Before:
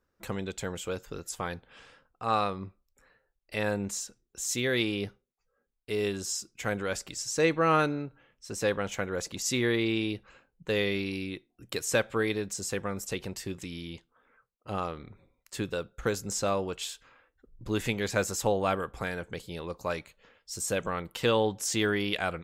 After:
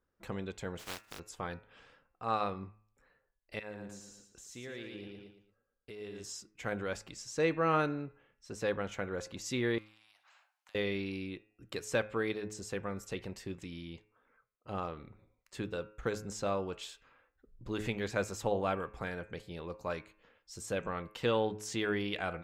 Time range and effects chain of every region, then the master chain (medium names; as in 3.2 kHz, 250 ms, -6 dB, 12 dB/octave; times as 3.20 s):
0.78–1.18 s: spectral contrast reduction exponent 0.12 + expander -46 dBFS
3.59–6.24 s: feedback delay 114 ms, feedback 33%, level -6 dB + compression 2.5:1, threshold -41 dBFS
9.78–10.75 s: steep high-pass 700 Hz 72 dB/octave + compression 12:1, threshold -51 dBFS + spectrum-flattening compressor 2:1
whole clip: low-pass 3.2 kHz 6 dB/octave; de-hum 106.3 Hz, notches 26; trim -4.5 dB